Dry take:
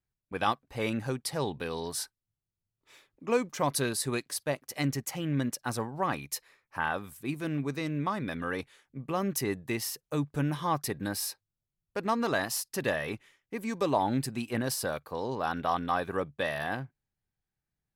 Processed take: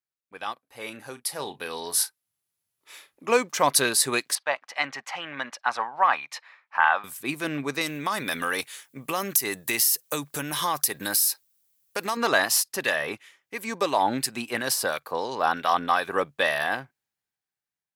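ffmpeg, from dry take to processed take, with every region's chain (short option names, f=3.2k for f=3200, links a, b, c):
-filter_complex "[0:a]asettb=1/sr,asplit=3[a][b][c];[a]atrim=end=0.534[d];[b]atrim=start=0.53:end=3.31,asetpts=PTS-STARTPTS,afade=t=in:d=0.004:c=qsin,afade=t=out:st=2.776:d=0.004:c=qsin,equalizer=f=11k:t=o:w=0.28:g=11,asplit=2[e][f];[f]adelay=33,volume=-12dB[g];[e][g]amix=inputs=2:normalize=0,atrim=end_sample=122598[h];[c]atrim=start=3.306[i];[d][h]acrossfade=d=0.004:c1=hsin:c2=qsin[j];[j][i]acrossfade=d=0.004:c1=qsin:c2=hsin,asettb=1/sr,asplit=3[k][l][m];[k]atrim=end=4.354[n];[l]atrim=start=4.35:end=7.04,asetpts=PTS-STARTPTS,afade=t=in:d=0.004:c=qsin,afade=t=out:st=2.686:d=0.004:c=qsin,highpass=180,lowpass=2.9k,lowshelf=f=560:t=q:w=1.5:g=-11[o];[m]atrim=start=7.036[p];[n][o]acrossfade=d=0.004:c1=hsin:c2=qsin[q];[q][p]acrossfade=d=0.004:c1=qsin:c2=hsin,asettb=1/sr,asplit=3[r][s][t];[r]atrim=end=7.814[u];[s]atrim=start=7.81:end=12.17,asetpts=PTS-STARTPTS,afade=t=in:d=0.004:c=qsin,afade=t=out:st=4.356:d=0.004:c=qsin,aemphasis=mode=production:type=75kf,acompressor=threshold=-30dB:ratio=6:attack=3.2:release=140:knee=1:detection=peak[v];[t]atrim=start=12.166[w];[u][v]acrossfade=d=0.004:c1=hsin:c2=qsin[x];[x][w]acrossfade=d=0.004:c1=qsin:c2=hsin,asettb=1/sr,asplit=3[y][z][aa];[y]atrim=end=12.724[ab];[z]atrim=start=12.72:end=16.17,asetpts=PTS-STARTPTS,afade=t=in:d=0.004:c=qsin,afade=t=out:st=3.446:d=0.004:c=qsin,highpass=48,acrossover=split=1400[ac][ad];[ac]aeval=exprs='val(0)*(1-0.5/2+0.5/2*cos(2*PI*2.9*n/s))':c=same[ae];[ad]aeval=exprs='val(0)*(1-0.5/2-0.5/2*cos(2*PI*2.9*n/s))':c=same[af];[ae][af]amix=inputs=2:normalize=0[ag];[aa]atrim=start=16.166[ah];[ab][ag]acrossfade=d=0.004:c1=hsin:c2=qsin[ai];[ai][ah]acrossfade=d=0.004:c1=qsin:c2=hsin,highpass=f=820:p=1,dynaudnorm=f=380:g=9:m=16.5dB,volume=-3dB"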